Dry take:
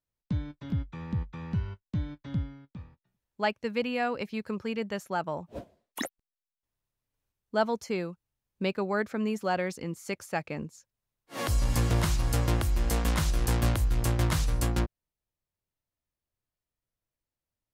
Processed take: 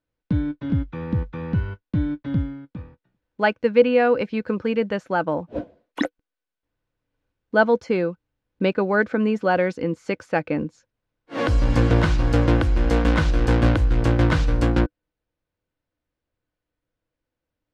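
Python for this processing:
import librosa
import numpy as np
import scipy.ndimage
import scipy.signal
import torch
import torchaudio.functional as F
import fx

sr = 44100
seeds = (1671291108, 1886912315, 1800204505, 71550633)

y = fx.block_float(x, sr, bits=7)
y = scipy.signal.sosfilt(scipy.signal.butter(2, 3300.0, 'lowpass', fs=sr, output='sos'), y)
y = fx.small_body(y, sr, hz=(300.0, 490.0, 1500.0), ring_ms=55, db=10)
y = y * 10.0 ** (7.0 / 20.0)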